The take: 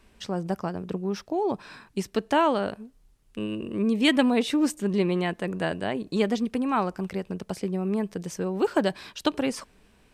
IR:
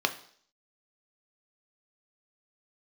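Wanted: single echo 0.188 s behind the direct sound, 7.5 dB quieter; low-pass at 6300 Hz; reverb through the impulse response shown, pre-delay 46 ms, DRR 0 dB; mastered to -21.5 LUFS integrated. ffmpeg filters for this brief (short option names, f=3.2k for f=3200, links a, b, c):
-filter_complex "[0:a]lowpass=6.3k,aecho=1:1:188:0.422,asplit=2[a][b];[1:a]atrim=start_sample=2205,adelay=46[c];[b][c]afir=irnorm=-1:irlink=0,volume=-10dB[d];[a][d]amix=inputs=2:normalize=0,volume=2.5dB"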